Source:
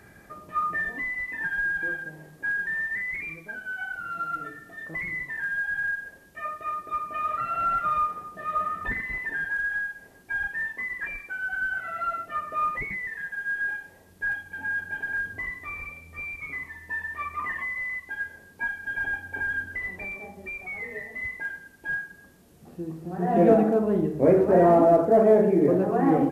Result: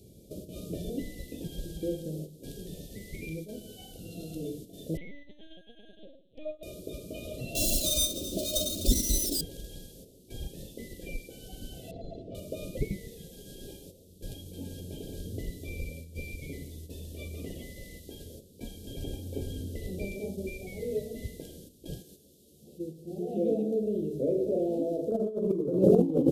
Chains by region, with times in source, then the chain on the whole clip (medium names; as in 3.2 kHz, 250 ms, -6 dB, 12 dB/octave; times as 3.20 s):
4.97–6.63 s: high-pass 370 Hz + peaking EQ 520 Hz +3 dB 1.4 oct + LPC vocoder at 8 kHz pitch kept
7.55–9.41 s: dead-time distortion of 0.075 ms + comb 3.3 ms, depth 72% + upward compressor, threshold -25 dBFS
11.91–12.35 s: one-bit delta coder 64 kbps, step -49 dBFS + low-pass 1.2 kHz
22.02–25.12 s: doubling 14 ms -6.5 dB + compression 2:1, threshold -43 dBFS + bass shelf 250 Hz -10 dB
whole clip: gate -45 dBFS, range -9 dB; elliptic band-stop 520–3400 Hz, stop band 50 dB; compressor with a negative ratio -27 dBFS, ratio -0.5; trim +5.5 dB